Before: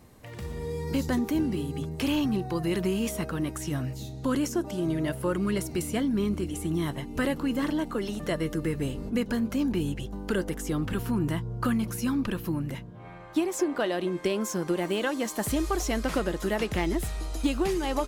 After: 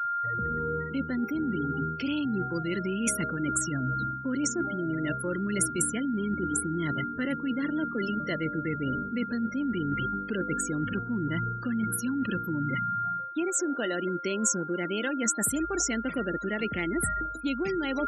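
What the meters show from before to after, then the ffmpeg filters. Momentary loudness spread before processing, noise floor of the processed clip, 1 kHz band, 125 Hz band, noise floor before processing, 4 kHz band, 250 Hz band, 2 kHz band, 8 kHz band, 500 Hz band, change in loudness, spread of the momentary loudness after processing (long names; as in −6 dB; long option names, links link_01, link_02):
5 LU, −37 dBFS, +5.5 dB, −2.5 dB, −42 dBFS, −3.5 dB, −1.5 dB, +3.0 dB, +7.5 dB, −3.5 dB, −0.5 dB, 3 LU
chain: -af "aeval=exprs='val(0)+0.0316*sin(2*PI*1400*n/s)':channel_layout=same,highpass=59,afftfilt=real='re*gte(hypot(re,im),0.0251)':imag='im*gte(hypot(re,im),0.0251)':win_size=1024:overlap=0.75,equalizer=frequency=125:width_type=o:width=1:gain=5,equalizer=frequency=250:width_type=o:width=1:gain=10,equalizer=frequency=500:width_type=o:width=1:gain=5,equalizer=frequency=1000:width_type=o:width=1:gain=-6,equalizer=frequency=2000:width_type=o:width=1:gain=11,equalizer=frequency=8000:width_type=o:width=1:gain=10,areverse,acompressor=threshold=-25dB:ratio=20,areverse,aemphasis=mode=production:type=75kf,volume=-1.5dB"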